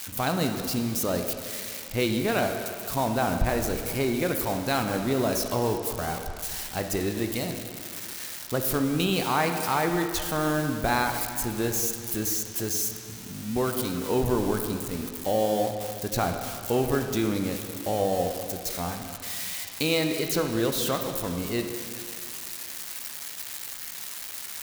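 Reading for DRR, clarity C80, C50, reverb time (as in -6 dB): 4.5 dB, 6.5 dB, 5.5 dB, 2.5 s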